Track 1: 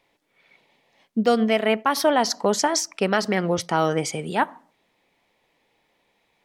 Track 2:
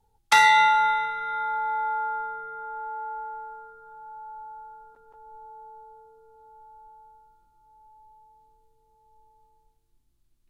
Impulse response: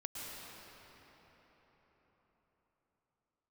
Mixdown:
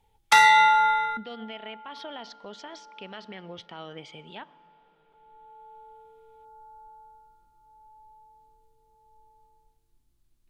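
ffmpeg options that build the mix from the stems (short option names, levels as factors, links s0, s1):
-filter_complex "[0:a]alimiter=limit=0.224:level=0:latency=1:release=129,lowpass=f=3300:t=q:w=4.3,volume=0.119,asplit=3[s0][s1][s2];[s1]volume=0.1[s3];[1:a]volume=1.06[s4];[s2]apad=whole_len=462961[s5];[s4][s5]sidechaincompress=threshold=0.00158:ratio=12:attack=49:release=1270[s6];[2:a]atrim=start_sample=2205[s7];[s3][s7]afir=irnorm=-1:irlink=0[s8];[s0][s6][s8]amix=inputs=3:normalize=0"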